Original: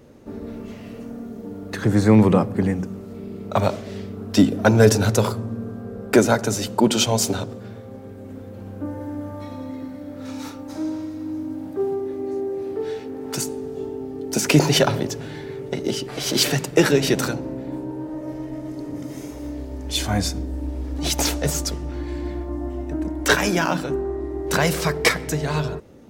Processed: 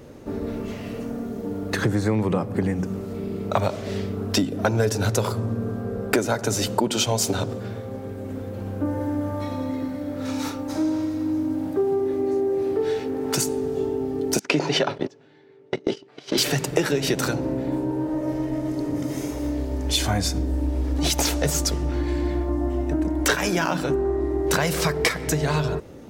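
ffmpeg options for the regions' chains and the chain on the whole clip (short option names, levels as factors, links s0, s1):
-filter_complex "[0:a]asettb=1/sr,asplit=3[s0][s1][s2];[s0]atrim=end=14.394[s3];[s1]atrim=start=14.39:end=16.38,asetpts=PTS-STARTPTS,afade=t=in:d=0.004:c=qsin,afade=t=out:st=1.986:d=0.004:c=qsin,highpass=200,lowpass=4400,agate=range=0.0631:threshold=0.0501:ratio=16:release=100:detection=peak[s4];[s2]atrim=start=16.376[s5];[s3][s4]acrossfade=d=0.004:c1=hsin:c2=qsin[s6];[s6][s5]acrossfade=d=0.004:c1=qsin:c2=hsin,acompressor=threshold=0.0631:ratio=6,equalizer=f=220:t=o:w=0.29:g=-4,volume=1.88"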